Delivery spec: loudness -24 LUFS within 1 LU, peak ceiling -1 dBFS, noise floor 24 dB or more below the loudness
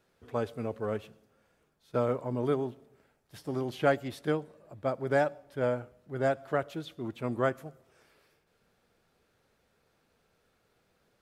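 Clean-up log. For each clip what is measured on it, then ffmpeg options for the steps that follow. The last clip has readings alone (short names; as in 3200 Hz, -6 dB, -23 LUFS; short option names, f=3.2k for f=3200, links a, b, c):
loudness -32.5 LUFS; peak -11.5 dBFS; loudness target -24.0 LUFS
-> -af "volume=8.5dB"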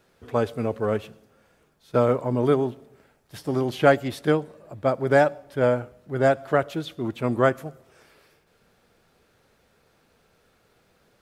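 loudness -24.0 LUFS; peak -3.0 dBFS; noise floor -64 dBFS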